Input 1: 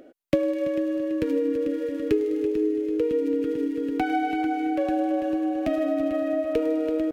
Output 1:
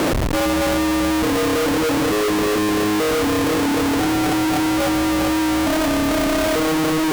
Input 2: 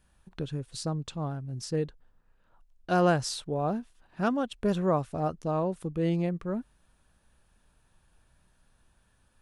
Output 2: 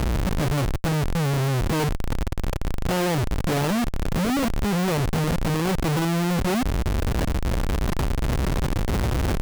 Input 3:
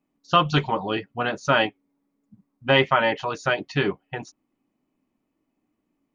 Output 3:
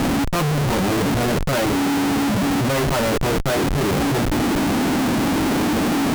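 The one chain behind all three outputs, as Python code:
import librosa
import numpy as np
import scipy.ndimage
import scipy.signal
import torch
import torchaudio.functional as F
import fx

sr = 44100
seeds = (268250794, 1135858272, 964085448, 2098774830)

y = fx.delta_mod(x, sr, bps=32000, step_db=-22.0)
y = scipy.signal.sosfilt(scipy.signal.butter(2, 42.0, 'highpass', fs=sr, output='sos'), y)
y = fx.tilt_shelf(y, sr, db=7.0, hz=970.0)
y = fx.rider(y, sr, range_db=4, speed_s=2.0)
y = fx.schmitt(y, sr, flips_db=-25.5)
y = F.gain(torch.from_numpy(y), 1.5).numpy()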